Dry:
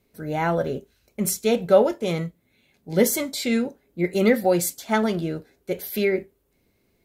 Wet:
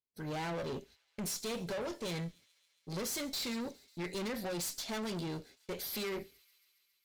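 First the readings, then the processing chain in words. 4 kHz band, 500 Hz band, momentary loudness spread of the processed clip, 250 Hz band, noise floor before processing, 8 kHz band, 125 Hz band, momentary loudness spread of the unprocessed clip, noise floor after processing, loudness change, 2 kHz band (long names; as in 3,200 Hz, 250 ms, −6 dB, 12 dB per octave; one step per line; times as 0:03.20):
−6.5 dB, −18.5 dB, 9 LU, −16.0 dB, −68 dBFS, −11.0 dB, −12.5 dB, 13 LU, −77 dBFS, −15.5 dB, −13.5 dB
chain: noise gate −49 dBFS, range −32 dB
parametric band 4,600 Hz +11.5 dB 1.3 octaves
downward compressor, threshold −19 dBFS, peak gain reduction 9.5 dB
tube saturation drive 31 dB, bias 0.45
on a send: delay with a high-pass on its return 137 ms, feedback 76%, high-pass 2,500 Hz, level −23 dB
on the sum: level −4.5 dB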